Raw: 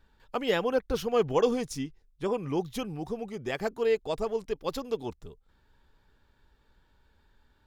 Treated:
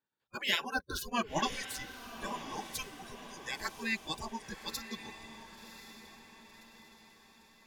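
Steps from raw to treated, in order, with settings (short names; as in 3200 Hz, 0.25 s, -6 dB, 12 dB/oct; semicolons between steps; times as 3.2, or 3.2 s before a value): spectral noise reduction 27 dB; spectral gate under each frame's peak -15 dB weak; diffused feedback echo 1.075 s, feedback 50%, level -11 dB; gain +6 dB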